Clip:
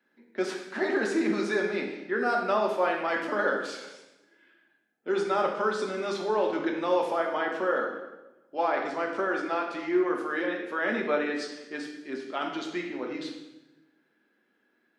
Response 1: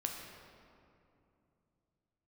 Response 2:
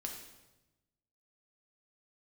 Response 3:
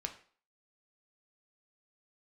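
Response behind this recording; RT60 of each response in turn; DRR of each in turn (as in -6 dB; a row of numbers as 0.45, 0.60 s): 2; 2.7, 1.0, 0.45 s; 1.0, 0.5, 4.5 dB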